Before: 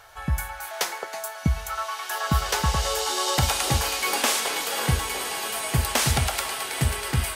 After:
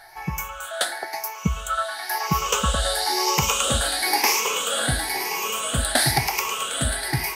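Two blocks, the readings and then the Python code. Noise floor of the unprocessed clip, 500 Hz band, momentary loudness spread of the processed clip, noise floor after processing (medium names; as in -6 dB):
-38 dBFS, +2.5 dB, 8 LU, -36 dBFS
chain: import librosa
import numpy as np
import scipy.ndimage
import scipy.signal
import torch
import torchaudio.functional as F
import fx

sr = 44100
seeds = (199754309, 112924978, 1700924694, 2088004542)

y = fx.spec_ripple(x, sr, per_octave=0.78, drift_hz=0.99, depth_db=16)
y = fx.peak_eq(y, sr, hz=84.0, db=-9.5, octaves=0.94)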